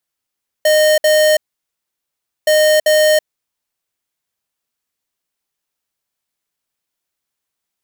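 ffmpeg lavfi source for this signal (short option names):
-f lavfi -i "aevalsrc='0.282*(2*lt(mod(615*t,1),0.5)-1)*clip(min(mod(mod(t,1.82),0.39),0.33-mod(mod(t,1.82),0.39))/0.005,0,1)*lt(mod(t,1.82),0.78)':d=3.64:s=44100"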